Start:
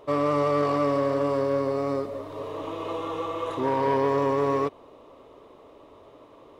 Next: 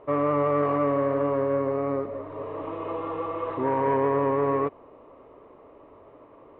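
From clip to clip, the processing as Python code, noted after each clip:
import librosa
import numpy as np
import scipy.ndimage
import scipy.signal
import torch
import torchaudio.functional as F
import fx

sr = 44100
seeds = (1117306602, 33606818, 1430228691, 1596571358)

y = scipy.signal.sosfilt(scipy.signal.butter(4, 2300.0, 'lowpass', fs=sr, output='sos'), x)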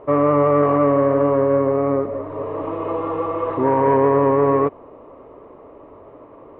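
y = fx.high_shelf(x, sr, hz=2400.0, db=-10.0)
y = y * 10.0 ** (8.5 / 20.0)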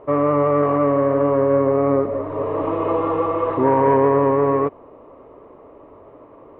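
y = fx.rider(x, sr, range_db=5, speed_s=2.0)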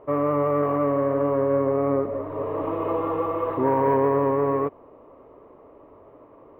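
y = np.interp(np.arange(len(x)), np.arange(len(x))[::3], x[::3])
y = y * 10.0 ** (-5.0 / 20.0)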